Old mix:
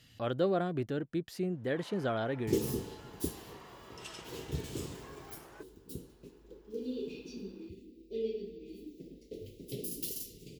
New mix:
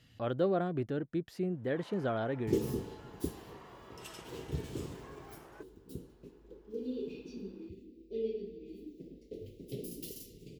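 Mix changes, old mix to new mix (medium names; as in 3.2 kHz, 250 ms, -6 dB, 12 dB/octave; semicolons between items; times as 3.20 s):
first sound: remove distance through air 66 m; master: add treble shelf 2.8 kHz -8.5 dB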